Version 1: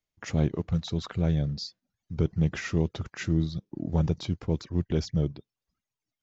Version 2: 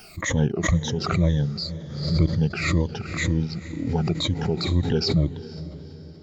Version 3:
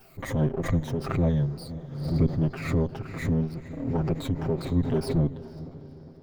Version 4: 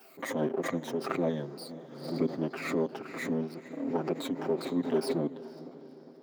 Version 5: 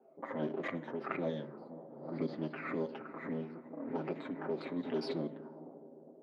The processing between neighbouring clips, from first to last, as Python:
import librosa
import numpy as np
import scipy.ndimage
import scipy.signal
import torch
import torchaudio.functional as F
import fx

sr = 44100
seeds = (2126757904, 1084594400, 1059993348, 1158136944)

y1 = fx.spec_ripple(x, sr, per_octave=1.1, drift_hz=-2.0, depth_db=19)
y1 = fx.echo_diffused(y1, sr, ms=483, feedback_pct=50, wet_db=-14.0)
y1 = fx.pre_swell(y1, sr, db_per_s=61.0)
y2 = fx.lower_of_two(y1, sr, delay_ms=7.6)
y2 = fx.peak_eq(y2, sr, hz=5300.0, db=-13.5, octaves=2.6)
y2 = y2 * 10.0 ** (-2.0 / 20.0)
y3 = scipy.signal.sosfilt(scipy.signal.butter(4, 240.0, 'highpass', fs=sr, output='sos'), y2)
y4 = fx.rev_fdn(y3, sr, rt60_s=0.65, lf_ratio=1.5, hf_ratio=0.5, size_ms=10.0, drr_db=10.5)
y4 = fx.envelope_lowpass(y4, sr, base_hz=550.0, top_hz=4500.0, q=2.1, full_db=-25.0, direction='up')
y4 = y4 * 10.0 ** (-7.5 / 20.0)